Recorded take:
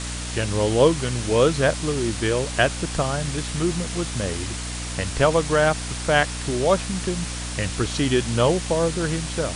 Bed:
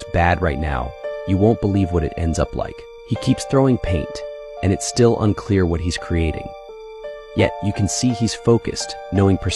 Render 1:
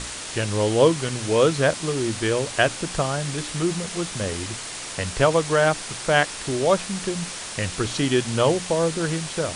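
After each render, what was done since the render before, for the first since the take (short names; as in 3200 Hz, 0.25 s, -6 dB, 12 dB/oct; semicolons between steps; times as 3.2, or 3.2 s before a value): notches 60/120/180/240/300 Hz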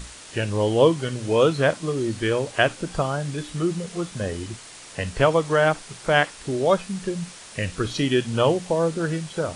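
noise print and reduce 9 dB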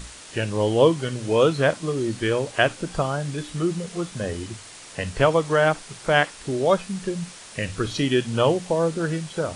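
notches 50/100 Hz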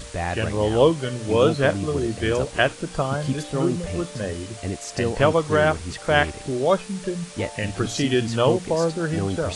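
add bed -11 dB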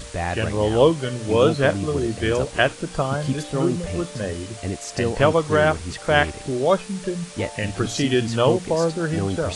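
gain +1 dB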